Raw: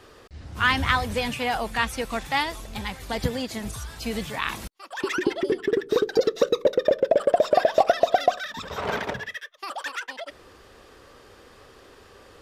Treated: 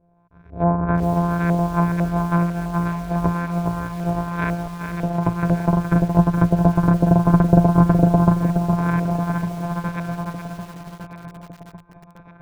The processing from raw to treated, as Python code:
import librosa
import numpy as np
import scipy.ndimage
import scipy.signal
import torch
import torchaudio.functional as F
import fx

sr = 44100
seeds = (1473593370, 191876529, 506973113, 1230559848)

p1 = np.r_[np.sort(x[:len(x) // 256 * 256].reshape(-1, 256), axis=1).ravel(), x[len(x) // 256 * 256:]]
p2 = fx.noise_reduce_blind(p1, sr, reduce_db=14)
p3 = fx.ripple_eq(p2, sr, per_octave=1.6, db=10)
p4 = fx.filter_lfo_lowpass(p3, sr, shape='saw_up', hz=2.0, low_hz=530.0, high_hz=1900.0, q=2.2)
p5 = np.clip(p4, -10.0 ** (-11.0 / 20.0), 10.0 ** (-11.0 / 20.0))
p6 = p4 + (p5 * 10.0 ** (-11.5 / 20.0))
p7 = fx.env_lowpass_down(p6, sr, base_hz=890.0, full_db=-15.0)
p8 = fx.echo_feedback(p7, sr, ms=1156, feedback_pct=47, wet_db=-12.0)
p9 = fx.echo_crushed(p8, sr, ms=418, feedback_pct=35, bits=6, wet_db=-7)
y = p9 * 10.0 ** (-1.0 / 20.0)